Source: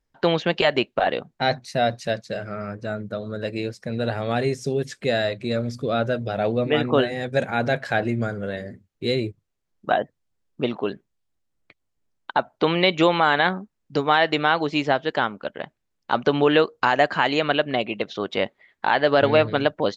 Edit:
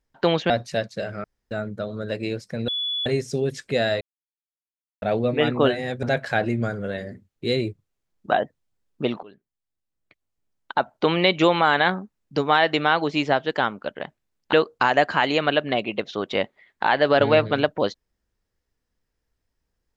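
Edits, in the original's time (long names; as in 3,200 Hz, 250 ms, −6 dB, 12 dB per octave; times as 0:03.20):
0:00.50–0:01.83: remove
0:02.57–0:02.84: fill with room tone
0:04.01–0:04.39: beep over 3,420 Hz −23.5 dBFS
0:05.34–0:06.35: silence
0:07.36–0:07.62: remove
0:10.82–0:12.51: fade in, from −23 dB
0:16.12–0:16.55: remove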